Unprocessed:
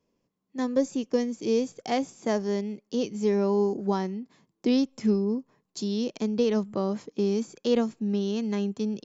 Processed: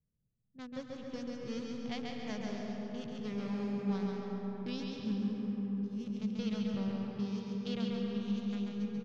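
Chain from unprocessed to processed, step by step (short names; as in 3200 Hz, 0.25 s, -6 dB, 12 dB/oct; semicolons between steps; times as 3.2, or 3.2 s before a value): Wiener smoothing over 41 samples; low-pass opened by the level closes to 1100 Hz, open at -25 dBFS; EQ curve 150 Hz 0 dB, 300 Hz -24 dB, 3500 Hz -5 dB, 6800 Hz -13 dB; feedback echo 0.137 s, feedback 46%, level -3.5 dB; on a send at -1.5 dB: reverb RT60 5.0 s, pre-delay 0.119 s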